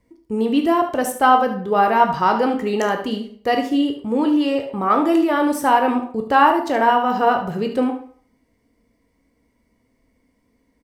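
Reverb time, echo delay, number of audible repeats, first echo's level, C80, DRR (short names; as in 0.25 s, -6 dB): 0.50 s, 73 ms, 1, -10.5 dB, 13.0 dB, 4.0 dB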